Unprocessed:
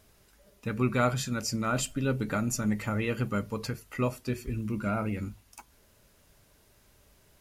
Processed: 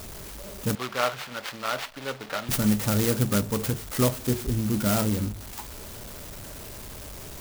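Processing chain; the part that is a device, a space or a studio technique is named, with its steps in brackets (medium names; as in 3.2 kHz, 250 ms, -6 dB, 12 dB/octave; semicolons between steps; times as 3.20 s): early CD player with a faulty converter (jump at every zero crossing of -40 dBFS; sampling jitter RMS 0.13 ms); 0.75–2.49 s: three-band isolator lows -21 dB, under 550 Hz, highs -18 dB, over 4.3 kHz; trim +5.5 dB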